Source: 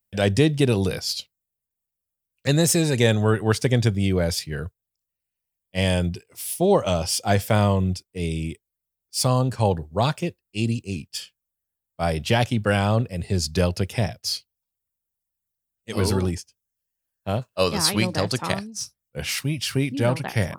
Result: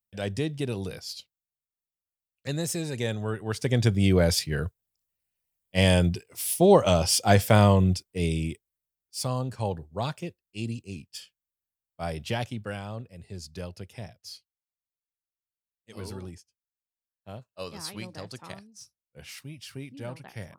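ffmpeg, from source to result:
-af "volume=1dB,afade=t=in:st=3.49:d=0.62:silence=0.251189,afade=t=out:st=8.08:d=1.08:silence=0.316228,afade=t=out:st=12.28:d=0.55:silence=0.421697"

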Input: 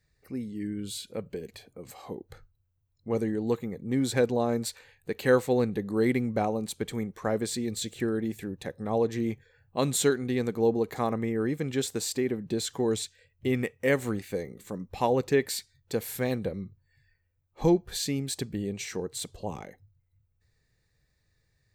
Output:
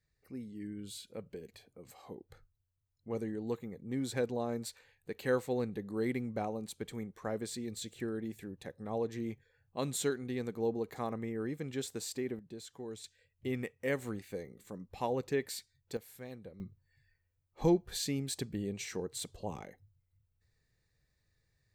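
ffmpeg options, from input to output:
-af "asetnsamples=n=441:p=0,asendcmd='12.39 volume volume -17dB;13.04 volume volume -9dB;15.97 volume volume -18dB;16.6 volume volume -5dB',volume=-9dB"

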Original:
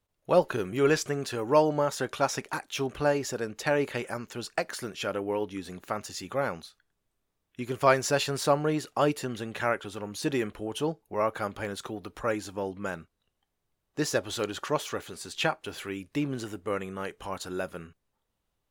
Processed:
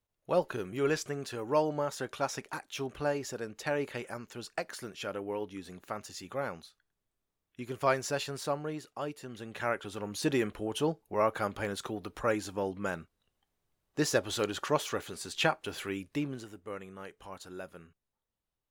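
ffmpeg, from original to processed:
-af "volume=7dB,afade=t=out:st=7.89:d=1.27:silence=0.421697,afade=t=in:st=9.16:d=0.98:silence=0.223872,afade=t=out:st=15.96:d=0.5:silence=0.334965"

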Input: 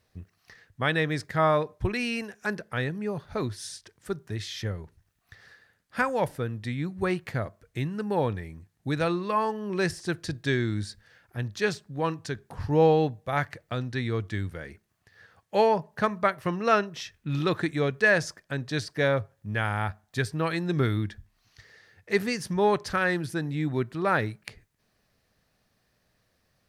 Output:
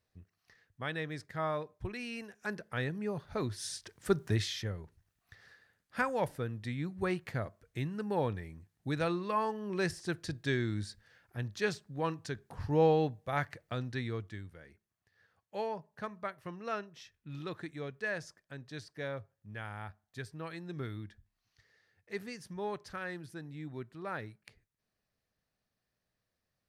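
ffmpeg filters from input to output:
-af "volume=4.5dB,afade=t=in:st=2.06:d=0.88:silence=0.446684,afade=t=in:st=3.46:d=0.81:silence=0.334965,afade=t=out:st=4.27:d=0.37:silence=0.298538,afade=t=out:st=13.92:d=0.51:silence=0.354813"

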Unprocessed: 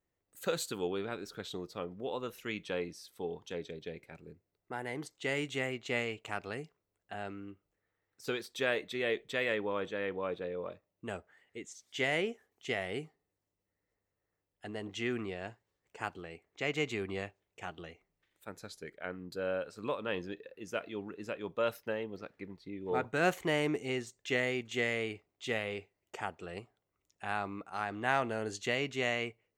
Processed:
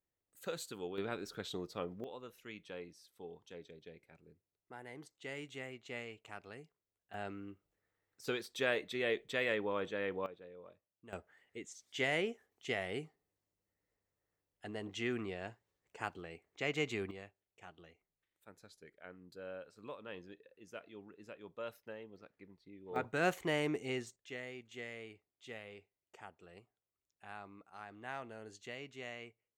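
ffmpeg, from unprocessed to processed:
-af "asetnsamples=n=441:p=0,asendcmd='0.98 volume volume -1dB;2.04 volume volume -11dB;7.14 volume volume -2dB;10.26 volume volume -15dB;11.13 volume volume -2.5dB;17.11 volume volume -12dB;22.96 volume volume -3.5dB;24.16 volume volume -14dB',volume=-8dB"

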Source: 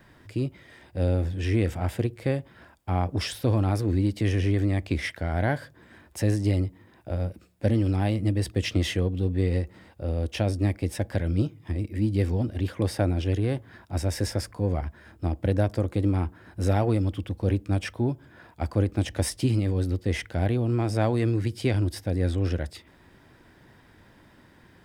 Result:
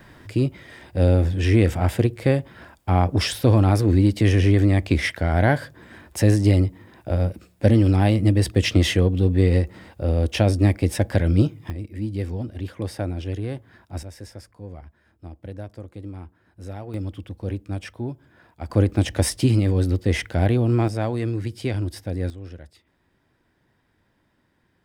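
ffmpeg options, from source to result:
-af "asetnsamples=n=441:p=0,asendcmd='11.7 volume volume -3dB;14.03 volume volume -12dB;16.94 volume volume -4dB;18.7 volume volume 5.5dB;20.88 volume volume -1dB;22.3 volume volume -12dB',volume=7dB"

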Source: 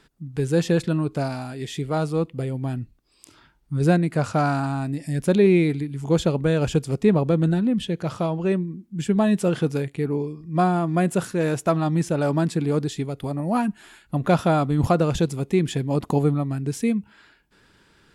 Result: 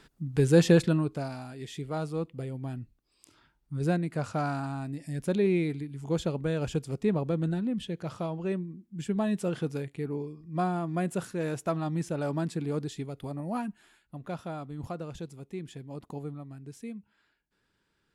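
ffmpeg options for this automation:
-af "volume=0.5dB,afade=t=out:st=0.72:d=0.48:silence=0.334965,afade=t=out:st=13.39:d=0.78:silence=0.354813"

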